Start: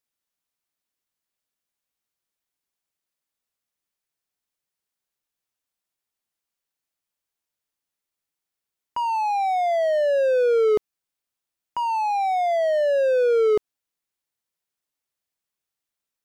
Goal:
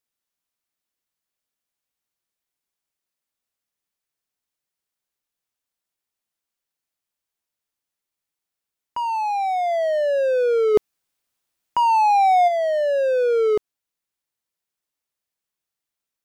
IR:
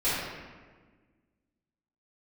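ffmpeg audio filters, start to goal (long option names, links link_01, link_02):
-filter_complex "[0:a]asplit=3[link_01][link_02][link_03];[link_01]afade=type=out:start_time=10.74:duration=0.02[link_04];[link_02]acontrast=85,afade=type=in:start_time=10.74:duration=0.02,afade=type=out:start_time=12.47:duration=0.02[link_05];[link_03]afade=type=in:start_time=12.47:duration=0.02[link_06];[link_04][link_05][link_06]amix=inputs=3:normalize=0"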